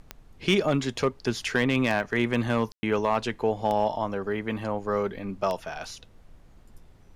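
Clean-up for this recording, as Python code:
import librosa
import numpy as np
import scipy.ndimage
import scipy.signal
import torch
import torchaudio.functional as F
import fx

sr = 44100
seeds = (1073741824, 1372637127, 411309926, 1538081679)

y = fx.fix_declip(x, sr, threshold_db=-14.0)
y = fx.fix_declick_ar(y, sr, threshold=10.0)
y = fx.fix_ambience(y, sr, seeds[0], print_start_s=6.59, print_end_s=7.09, start_s=2.72, end_s=2.83)
y = fx.noise_reduce(y, sr, print_start_s=6.59, print_end_s=7.09, reduce_db=21.0)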